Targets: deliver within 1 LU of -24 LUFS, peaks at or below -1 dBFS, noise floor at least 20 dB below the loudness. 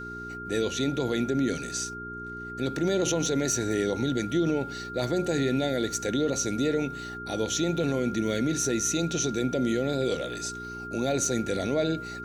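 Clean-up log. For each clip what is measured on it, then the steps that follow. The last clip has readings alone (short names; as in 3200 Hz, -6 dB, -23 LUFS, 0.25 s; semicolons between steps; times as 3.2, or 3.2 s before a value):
hum 60 Hz; harmonics up to 420 Hz; hum level -40 dBFS; steady tone 1400 Hz; tone level -37 dBFS; loudness -28.0 LUFS; peak -14.5 dBFS; loudness target -24.0 LUFS
-> de-hum 60 Hz, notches 7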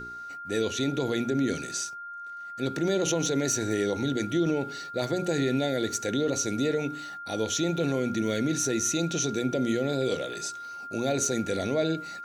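hum none; steady tone 1400 Hz; tone level -37 dBFS
-> notch 1400 Hz, Q 30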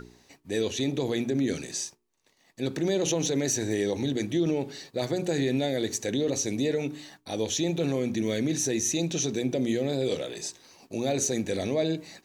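steady tone none; loudness -28.5 LUFS; peak -15.0 dBFS; loudness target -24.0 LUFS
-> gain +4.5 dB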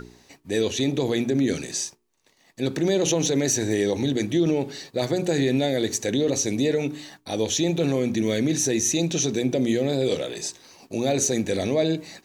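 loudness -24.0 LUFS; peak -10.5 dBFS; noise floor -62 dBFS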